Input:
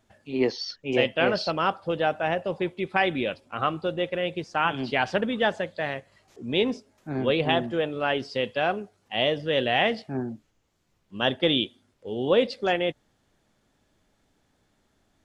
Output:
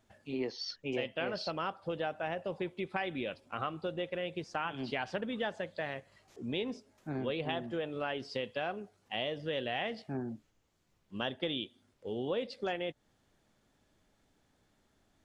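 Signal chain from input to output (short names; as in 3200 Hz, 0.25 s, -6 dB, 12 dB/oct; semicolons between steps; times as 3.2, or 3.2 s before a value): compressor 3:1, threshold -31 dBFS, peak gain reduction 11.5 dB; gain -3.5 dB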